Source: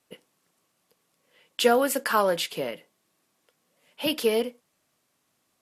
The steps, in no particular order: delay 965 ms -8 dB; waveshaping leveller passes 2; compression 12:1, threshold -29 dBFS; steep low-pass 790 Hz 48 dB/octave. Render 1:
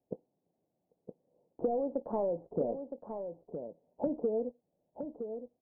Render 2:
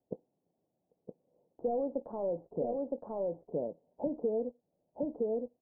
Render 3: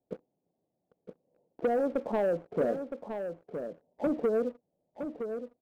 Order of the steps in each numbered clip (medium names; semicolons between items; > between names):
waveshaping leveller > steep low-pass > compression > delay; waveshaping leveller > delay > compression > steep low-pass; steep low-pass > compression > waveshaping leveller > delay